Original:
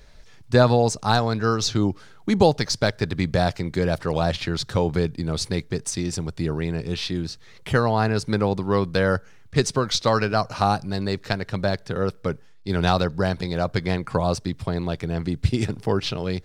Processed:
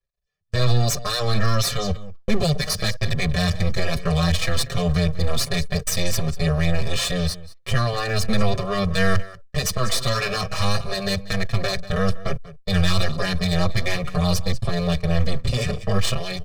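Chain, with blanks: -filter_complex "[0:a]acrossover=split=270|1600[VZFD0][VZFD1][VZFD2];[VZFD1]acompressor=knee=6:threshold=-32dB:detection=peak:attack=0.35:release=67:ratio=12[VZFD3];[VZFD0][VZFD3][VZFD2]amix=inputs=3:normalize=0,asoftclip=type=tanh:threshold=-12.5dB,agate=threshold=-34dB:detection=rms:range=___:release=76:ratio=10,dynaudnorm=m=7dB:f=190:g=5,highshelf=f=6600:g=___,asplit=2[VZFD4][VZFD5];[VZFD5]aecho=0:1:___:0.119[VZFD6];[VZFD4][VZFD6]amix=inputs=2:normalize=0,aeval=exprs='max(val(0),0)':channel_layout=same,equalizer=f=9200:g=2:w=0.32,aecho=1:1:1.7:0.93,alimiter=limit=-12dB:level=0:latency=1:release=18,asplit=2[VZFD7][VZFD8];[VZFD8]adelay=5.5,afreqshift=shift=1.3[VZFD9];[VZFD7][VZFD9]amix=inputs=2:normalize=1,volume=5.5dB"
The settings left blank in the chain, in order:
-37dB, -6, 190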